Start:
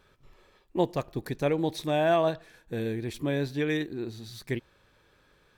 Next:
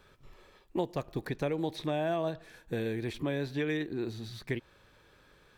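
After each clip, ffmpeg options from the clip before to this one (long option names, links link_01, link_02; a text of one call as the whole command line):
ffmpeg -i in.wav -filter_complex "[0:a]acrossover=split=470|3900[link_01][link_02][link_03];[link_01]acompressor=threshold=-35dB:ratio=4[link_04];[link_02]acompressor=threshold=-37dB:ratio=4[link_05];[link_03]acompressor=threshold=-59dB:ratio=4[link_06];[link_04][link_05][link_06]amix=inputs=3:normalize=0,volume=2dB" out.wav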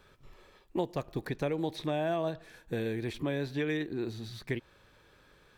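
ffmpeg -i in.wav -af anull out.wav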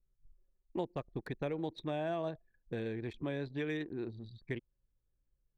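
ffmpeg -i in.wav -af "anlmdn=0.398,volume=-5dB" out.wav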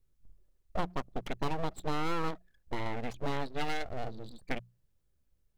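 ffmpeg -i in.wav -af "aeval=exprs='abs(val(0))':channel_layout=same,bandreject=frequency=60:width_type=h:width=6,bandreject=frequency=120:width_type=h:width=6,bandreject=frequency=180:width_type=h:width=6,volume=6.5dB" out.wav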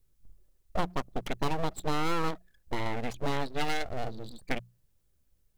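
ffmpeg -i in.wav -af "highshelf=frequency=5500:gain=6,volume=3dB" out.wav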